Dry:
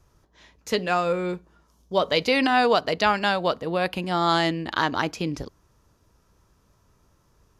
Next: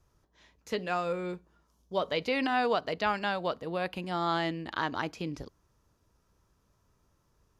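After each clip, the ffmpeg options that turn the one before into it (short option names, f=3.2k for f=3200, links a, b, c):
-filter_complex "[0:a]acrossover=split=3700[a][b];[b]acompressor=threshold=-38dB:ratio=4:attack=1:release=60[c];[a][c]amix=inputs=2:normalize=0,volume=-8dB"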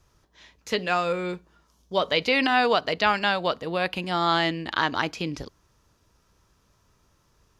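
-af "equalizer=f=3.5k:w=0.46:g=6,volume=5dB"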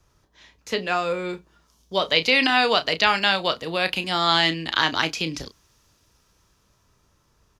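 -filter_complex "[0:a]asplit=2[a][b];[b]adelay=31,volume=-11.5dB[c];[a][c]amix=inputs=2:normalize=0,acrossover=split=220|2200[d][e][f];[f]dynaudnorm=f=210:g=17:m=9.5dB[g];[d][e][g]amix=inputs=3:normalize=0"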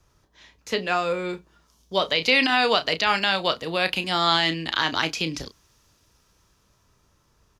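-af "alimiter=limit=-7.5dB:level=0:latency=1:release=69"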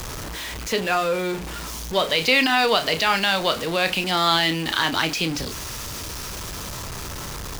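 -af "aeval=exprs='val(0)+0.5*0.0473*sgn(val(0))':c=same"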